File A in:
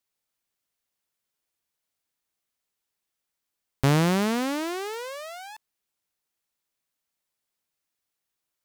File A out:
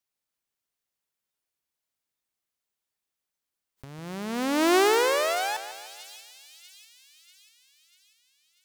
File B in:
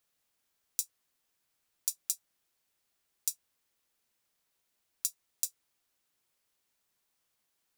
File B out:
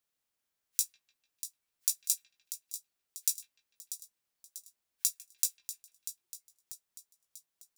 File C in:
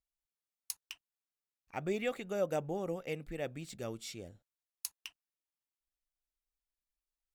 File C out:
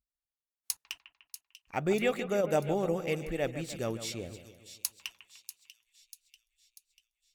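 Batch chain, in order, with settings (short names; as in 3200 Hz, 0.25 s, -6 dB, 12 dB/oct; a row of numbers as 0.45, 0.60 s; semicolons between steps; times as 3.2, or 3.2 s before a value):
spectral noise reduction 16 dB; negative-ratio compressor -31 dBFS, ratio -0.5; split-band echo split 2800 Hz, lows 0.149 s, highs 0.641 s, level -11.5 dB; gain +6.5 dB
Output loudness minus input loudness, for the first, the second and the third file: +1.5, +1.5, +6.0 LU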